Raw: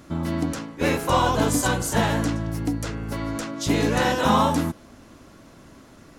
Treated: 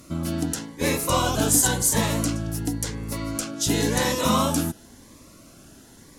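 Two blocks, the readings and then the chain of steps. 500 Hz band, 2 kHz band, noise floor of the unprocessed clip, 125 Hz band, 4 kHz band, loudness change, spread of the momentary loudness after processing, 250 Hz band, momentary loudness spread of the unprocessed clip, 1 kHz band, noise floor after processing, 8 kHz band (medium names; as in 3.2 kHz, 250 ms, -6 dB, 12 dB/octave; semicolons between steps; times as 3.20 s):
-2.0 dB, -2.5 dB, -49 dBFS, -1.0 dB, +2.0 dB, 0.0 dB, 11 LU, -1.5 dB, 10 LU, -4.5 dB, -50 dBFS, +8.5 dB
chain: peaking EQ 11 kHz +11.5 dB 1.9 oct; Shepard-style phaser rising 0.94 Hz; trim -1 dB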